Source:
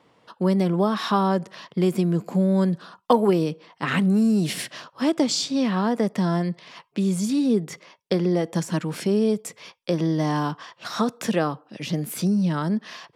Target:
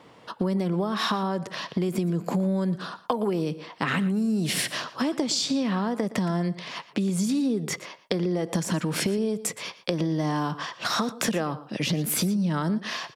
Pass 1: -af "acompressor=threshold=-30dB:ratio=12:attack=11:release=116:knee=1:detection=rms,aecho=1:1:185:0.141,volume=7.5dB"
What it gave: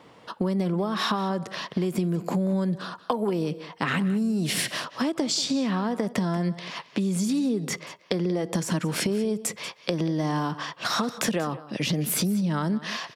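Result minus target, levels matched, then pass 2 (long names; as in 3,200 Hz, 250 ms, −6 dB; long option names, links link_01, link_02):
echo 68 ms late
-af "acompressor=threshold=-30dB:ratio=12:attack=11:release=116:knee=1:detection=rms,aecho=1:1:117:0.141,volume=7.5dB"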